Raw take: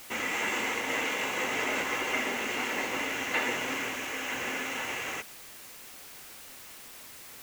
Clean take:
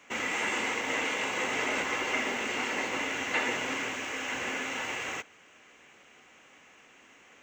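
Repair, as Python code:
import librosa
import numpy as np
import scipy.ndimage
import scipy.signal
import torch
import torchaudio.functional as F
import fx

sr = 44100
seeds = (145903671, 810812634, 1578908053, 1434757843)

y = fx.noise_reduce(x, sr, print_start_s=6.75, print_end_s=7.25, reduce_db=10.0)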